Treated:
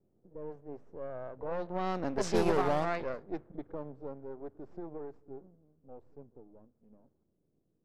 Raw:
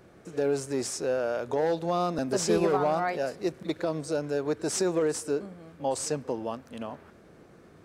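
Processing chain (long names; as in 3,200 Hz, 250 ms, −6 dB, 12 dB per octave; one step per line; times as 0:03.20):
gain on one half-wave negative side −12 dB
source passing by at 0:02.47, 25 m/s, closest 14 metres
low-pass that shuts in the quiet parts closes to 390 Hz, open at −23.5 dBFS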